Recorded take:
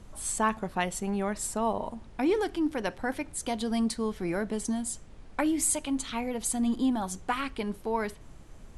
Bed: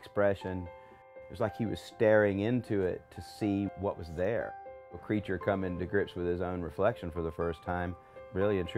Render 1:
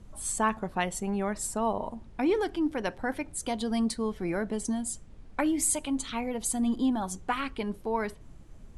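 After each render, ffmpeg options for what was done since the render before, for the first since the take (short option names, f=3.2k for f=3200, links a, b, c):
-af "afftdn=nr=6:nf=-50"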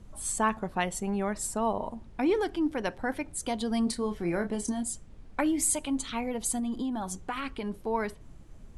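-filter_complex "[0:a]asettb=1/sr,asplit=3[a][b][c];[a]atrim=end=3.844[d];[b]atrim=start=3.84:end=4.83,asetpts=PTS-STARTPTS,afade=t=in:d=0.004:c=qsin,afade=t=out:st=0.986:d=0.004:c=qsin,asplit=2[e][f];[f]adelay=29,volume=-7.5dB[g];[e][g]amix=inputs=2:normalize=0,atrim=end_sample=43659[h];[c]atrim=start=4.826[i];[d][h]acrossfade=d=0.004:c1=hsin:c2=qsin[j];[j][i]acrossfade=d=0.004:c1=qsin:c2=hsin,asettb=1/sr,asplit=3[k][l][m];[k]atrim=end=6.594[n];[l]atrim=start=6.59:end=7.78,asetpts=PTS-STARTPTS,afade=t=in:d=0.004:c=qsin,afade=t=out:st=1.186:d=0.004:c=qsin,acompressor=threshold=-29dB:ratio=4:attack=3.2:release=140:knee=1:detection=peak[o];[m]atrim=start=7.776[p];[n][o]acrossfade=d=0.004:c1=hsin:c2=qsin[q];[q][p]acrossfade=d=0.004:c1=qsin:c2=hsin"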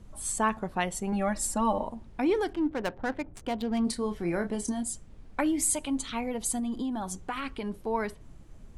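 -filter_complex "[0:a]asettb=1/sr,asplit=3[a][b][c];[a]atrim=end=1.124[d];[b]atrim=start=1.12:end=1.83,asetpts=PTS-STARTPTS,afade=t=in:d=0.004:c=qsin,afade=t=out:st=0.706:d=0.004:c=qsin,aecho=1:1:3.6:0.94,atrim=end_sample=31311[e];[c]atrim=start=1.826[f];[d][e]acrossfade=d=0.004:c1=hsin:c2=qsin[g];[g][f]acrossfade=d=0.004:c1=qsin:c2=hsin,asettb=1/sr,asplit=3[h][i][j];[h]atrim=end=2.534[k];[i]atrim=start=2.53:end=3.85,asetpts=PTS-STARTPTS,afade=t=in:d=0.004:c=qsin,afade=t=out:st=1.316:d=0.004:c=qsin,adynamicsmooth=sensitivity=7.5:basefreq=950[l];[j]atrim=start=3.846[m];[k][l]acrossfade=d=0.004:c1=hsin:c2=qsin[n];[n][m]acrossfade=d=0.004:c1=qsin:c2=hsin"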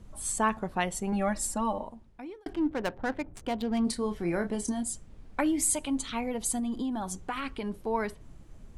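-filter_complex "[0:a]asplit=2[a][b];[a]atrim=end=2.46,asetpts=PTS-STARTPTS,afade=t=out:st=1.29:d=1.17[c];[b]atrim=start=2.46,asetpts=PTS-STARTPTS,afade=t=in:d=0.004:c=hsin[d];[c][d]concat=n=2:v=0:a=1"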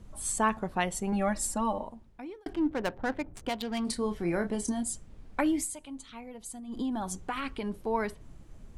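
-filter_complex "[0:a]asettb=1/sr,asplit=3[a][b][c];[a]atrim=end=3.494[d];[b]atrim=start=3.49:end=3.89,asetpts=PTS-STARTPTS,afade=t=in:d=0.004:c=qsin,afade=t=out:st=0.396:d=0.004:c=qsin,tiltshelf=f=920:g=-6[e];[c]atrim=start=3.886[f];[d][e]acrossfade=d=0.004:c1=hsin:c2=qsin[g];[g][f]acrossfade=d=0.004:c1=qsin:c2=hsin,asplit=3[h][i][j];[h]atrim=end=5.68,asetpts=PTS-STARTPTS,afade=t=out:st=5.56:d=0.12:silence=0.251189[k];[i]atrim=start=5.68:end=6.67,asetpts=PTS-STARTPTS,volume=-12dB[l];[j]atrim=start=6.67,asetpts=PTS-STARTPTS,afade=t=in:d=0.12:silence=0.251189[m];[k][l][m]concat=n=3:v=0:a=1"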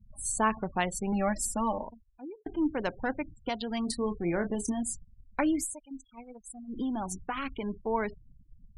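-af "afftfilt=real='re*gte(hypot(re,im),0.0112)':imag='im*gte(hypot(re,im),0.0112)':win_size=1024:overlap=0.75,agate=range=-7dB:threshold=-43dB:ratio=16:detection=peak"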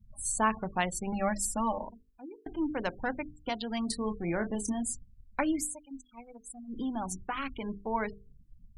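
-af "equalizer=f=390:w=1.5:g=-3,bandreject=f=50:t=h:w=6,bandreject=f=100:t=h:w=6,bandreject=f=150:t=h:w=6,bandreject=f=200:t=h:w=6,bandreject=f=250:t=h:w=6,bandreject=f=300:t=h:w=6,bandreject=f=350:t=h:w=6,bandreject=f=400:t=h:w=6,bandreject=f=450:t=h:w=6"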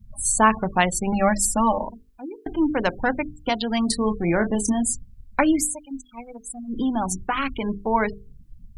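-af "volume=10.5dB"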